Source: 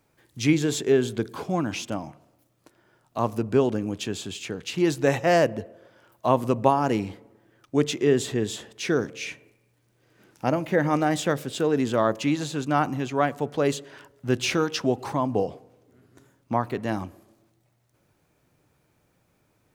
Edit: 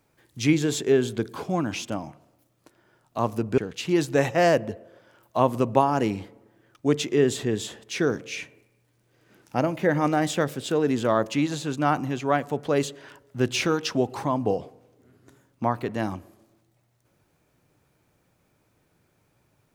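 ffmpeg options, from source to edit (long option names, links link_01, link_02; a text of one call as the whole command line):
ffmpeg -i in.wav -filter_complex "[0:a]asplit=2[link_01][link_02];[link_01]atrim=end=3.582[link_03];[link_02]atrim=start=4.468[link_04];[link_03][link_04]acrossfade=duration=0.004:curve1=hsin:curve2=hsin" out.wav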